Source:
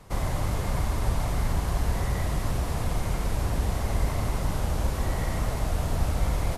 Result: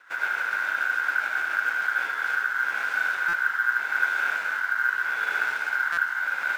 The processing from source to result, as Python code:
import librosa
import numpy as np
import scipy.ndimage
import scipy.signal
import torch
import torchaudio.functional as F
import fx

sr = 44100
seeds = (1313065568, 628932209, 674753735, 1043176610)

y = fx.rotary_switch(x, sr, hz=7.0, then_hz=0.8, switch_at_s=1.66)
y = y * np.sin(2.0 * np.pi * 1500.0 * np.arange(len(y)) / sr)
y = fx.highpass(y, sr, hz=850.0, slope=6)
y = fx.high_shelf(y, sr, hz=7700.0, db=-10.0)
y = fx.doubler(y, sr, ms=16.0, db=-8.5)
y = y + 10.0 ** (-3.5 / 20.0) * np.pad(y, (int(76 * sr / 1000.0), 0))[:len(y)]
y = fx.buffer_glitch(y, sr, at_s=(3.28, 5.92), block=256, repeats=8)
y = np.interp(np.arange(len(y)), np.arange(len(y))[::3], y[::3])
y = y * 10.0 ** (3.5 / 20.0)